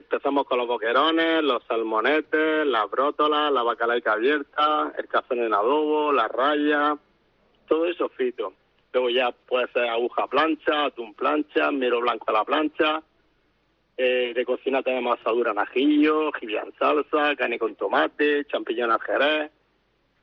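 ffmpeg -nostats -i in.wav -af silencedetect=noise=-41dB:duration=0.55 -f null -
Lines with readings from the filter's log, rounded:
silence_start: 6.97
silence_end: 7.68 | silence_duration: 0.72
silence_start: 13.00
silence_end: 13.98 | silence_duration: 0.98
silence_start: 19.47
silence_end: 20.23 | silence_duration: 0.76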